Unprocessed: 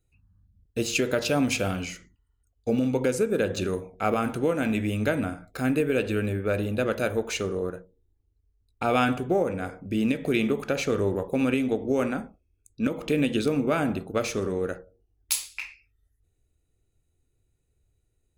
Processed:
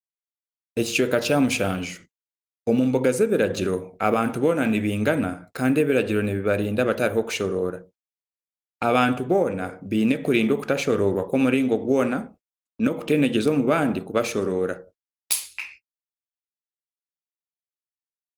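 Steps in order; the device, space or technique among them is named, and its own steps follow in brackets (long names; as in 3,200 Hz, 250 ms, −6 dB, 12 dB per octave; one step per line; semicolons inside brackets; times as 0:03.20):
0:13.74–0:15.34: dynamic equaliser 100 Hz, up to −3 dB, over −50 dBFS, Q 1.9
video call (high-pass filter 110 Hz 12 dB per octave; automatic gain control gain up to 5.5 dB; noise gate −43 dBFS, range −48 dB; level −1 dB; Opus 32 kbit/s 48,000 Hz)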